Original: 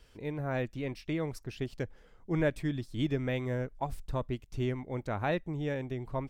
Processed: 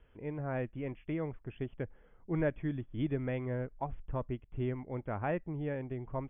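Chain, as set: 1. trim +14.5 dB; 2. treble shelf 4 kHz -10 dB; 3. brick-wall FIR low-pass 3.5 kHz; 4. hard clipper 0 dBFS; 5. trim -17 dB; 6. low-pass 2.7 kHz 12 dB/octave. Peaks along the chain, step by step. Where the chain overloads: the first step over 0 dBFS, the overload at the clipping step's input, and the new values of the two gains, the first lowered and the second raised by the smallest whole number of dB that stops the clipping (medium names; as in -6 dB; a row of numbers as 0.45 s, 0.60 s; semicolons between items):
-2.0 dBFS, -2.0 dBFS, -2.0 dBFS, -2.0 dBFS, -19.0 dBFS, -19.5 dBFS; nothing clips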